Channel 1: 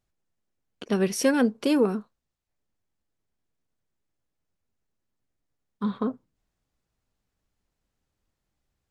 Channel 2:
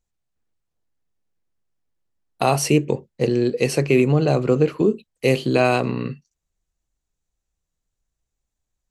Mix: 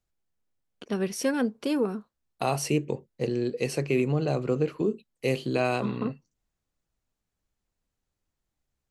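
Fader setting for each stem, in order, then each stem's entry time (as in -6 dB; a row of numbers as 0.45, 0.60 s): -4.5, -8.5 dB; 0.00, 0.00 s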